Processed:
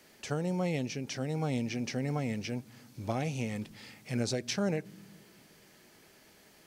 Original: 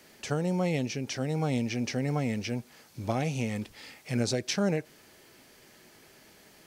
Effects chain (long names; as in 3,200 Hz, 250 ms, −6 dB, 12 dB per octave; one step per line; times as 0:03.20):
on a send: inverse Chebyshev low-pass filter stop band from 1,200 Hz, stop band 60 dB + convolution reverb RT60 2.7 s, pre-delay 47 ms, DRR 35 dB
on the sum: level −3.5 dB